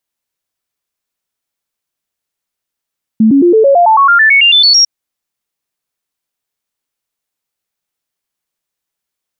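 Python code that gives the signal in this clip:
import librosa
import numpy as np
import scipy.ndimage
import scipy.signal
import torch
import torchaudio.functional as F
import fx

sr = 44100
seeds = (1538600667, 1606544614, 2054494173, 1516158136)

y = fx.stepped_sweep(sr, from_hz=220.0, direction='up', per_octave=3, tones=15, dwell_s=0.11, gap_s=0.0, level_db=-3.5)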